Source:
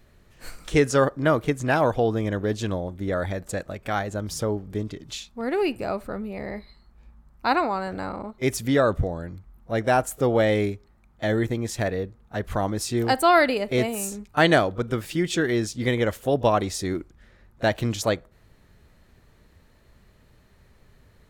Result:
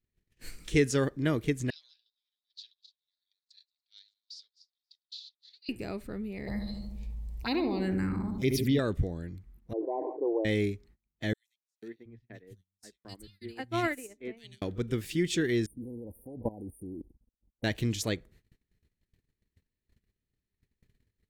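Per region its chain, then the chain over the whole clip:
1.7–5.69 regenerating reverse delay 0.146 s, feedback 54%, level -8.5 dB + Butterworth band-pass 4300 Hz, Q 3.8
6.47–8.79 envelope phaser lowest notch 230 Hz, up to 1500 Hz, full sweep at -21 dBFS + darkening echo 74 ms, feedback 67%, low-pass 980 Hz, level -6.5 dB + fast leveller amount 50%
9.73–10.45 brick-wall FIR band-pass 280–1100 Hz + sustainer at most 58 dB/s
11.33–14.62 three bands offset in time highs, mids, lows 0.49/0.72 s, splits 180/2700 Hz + upward expander 2.5:1, over -32 dBFS
15.66–17.64 brick-wall FIR band-stop 1000–8700 Hz + level quantiser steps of 18 dB + comb 3.8 ms, depth 38%
whole clip: gate -51 dBFS, range -26 dB; band shelf 880 Hz -11 dB; gain -4 dB

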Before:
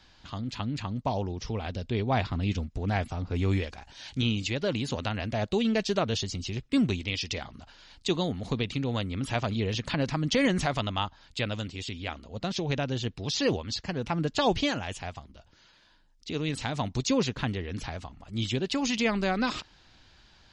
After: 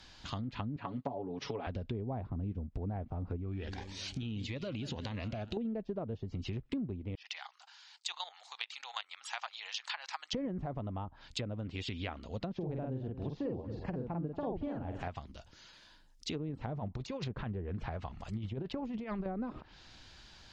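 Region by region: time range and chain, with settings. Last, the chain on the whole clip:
0.76–1.67 BPF 220–5400 Hz + comb 7.1 ms, depth 84%
3.36–5.57 feedback echo 0.184 s, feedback 54%, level -18.5 dB + compressor 4:1, threshold -32 dBFS + cascading phaser rising 1.6 Hz
7.15–10.33 Chebyshev band-pass 800–8400 Hz, order 4 + level quantiser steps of 12 dB
12.56–15.08 block floating point 7-bit + doubler 46 ms -3 dB + echo 0.229 s -16.5 dB
16.65–19.26 bell 280 Hz -7.5 dB 0.28 oct + negative-ratio compressor -31 dBFS, ratio -0.5 + Doppler distortion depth 0.13 ms
whole clip: treble ducked by the level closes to 670 Hz, closed at -27.5 dBFS; high shelf 5900 Hz +7 dB; compressor 6:1, threshold -36 dBFS; gain +1 dB

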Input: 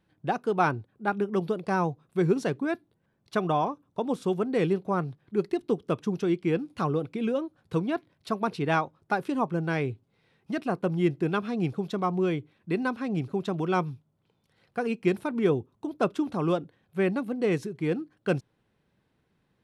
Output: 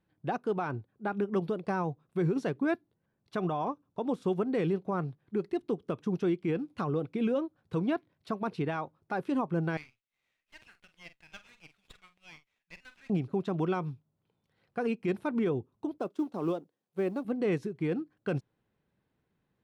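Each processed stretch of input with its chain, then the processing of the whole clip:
9.77–13.1 inverse Chebyshev high-pass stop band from 990 Hz + doubler 46 ms -12 dB + running maximum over 5 samples
15.98–17.25 G.711 law mismatch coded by A + HPF 230 Hz + bell 1900 Hz -8.5 dB 1.6 oct
whole clip: high shelf 4300 Hz -7.5 dB; limiter -23 dBFS; upward expander 1.5:1, over -43 dBFS; gain +2 dB

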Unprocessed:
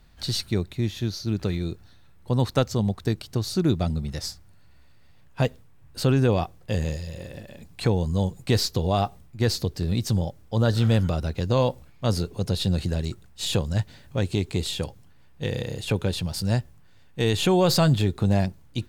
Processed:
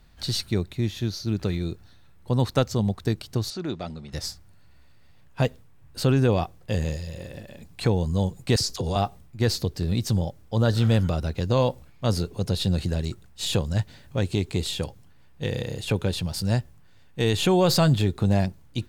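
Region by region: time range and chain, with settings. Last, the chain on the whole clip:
3.5–4.13 HPF 530 Hz 6 dB/oct + transient shaper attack -5 dB, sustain +2 dB + air absorption 94 m
8.56–8.96 band shelf 6900 Hz +9 dB 1.3 oct + dispersion lows, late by 47 ms, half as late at 690 Hz + compressor 5:1, threshold -22 dBFS
whole clip: dry

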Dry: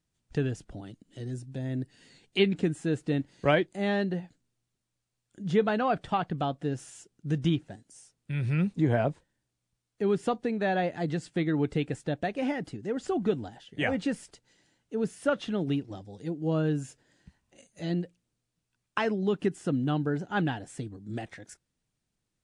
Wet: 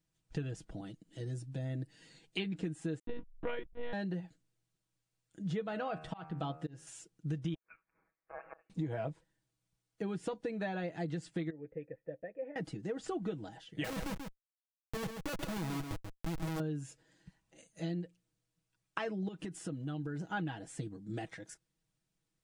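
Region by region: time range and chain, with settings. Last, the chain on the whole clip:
2.99–3.93 backlash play -34.5 dBFS + monotone LPC vocoder at 8 kHz 240 Hz
5.68–6.87 de-hum 78.51 Hz, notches 36 + auto swell 0.366 s
7.54–8.7 HPF 900 Hz 24 dB/oct + flipped gate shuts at -29 dBFS, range -25 dB + inverted band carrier 3100 Hz
11.5–12.56 vocal tract filter e + high shelf 2000 Hz -10 dB
13.84–16.6 Schmitt trigger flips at -33 dBFS + echo 0.135 s -8 dB
19.28–20.31 high shelf 7300 Hz +5.5 dB + compressor 5:1, threshold -33 dBFS
whole clip: comb 6.2 ms, depth 63%; compressor 6:1, threshold -30 dBFS; gain -4 dB

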